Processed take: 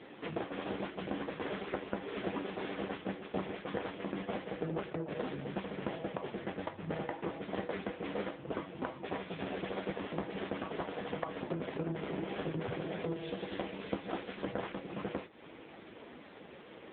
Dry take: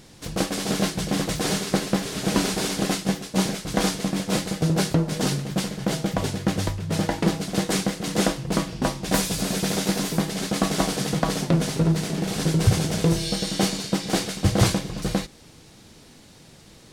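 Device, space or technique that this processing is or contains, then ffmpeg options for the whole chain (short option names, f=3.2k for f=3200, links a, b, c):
voicemail: -af "highpass=310,lowpass=2.6k,acompressor=threshold=-39dB:ratio=8,volume=7dB" -ar 8000 -c:a libopencore_amrnb -b:a 5900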